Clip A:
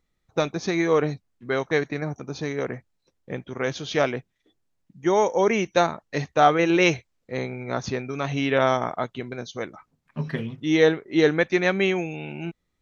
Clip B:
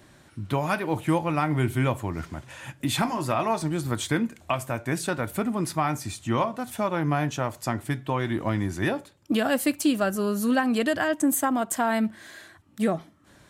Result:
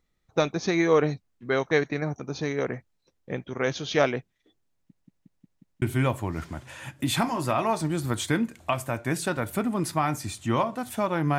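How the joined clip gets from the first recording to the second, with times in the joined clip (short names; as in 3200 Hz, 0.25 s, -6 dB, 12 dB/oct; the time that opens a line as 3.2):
clip A
4.74 stutter in place 0.18 s, 6 plays
5.82 switch to clip B from 1.63 s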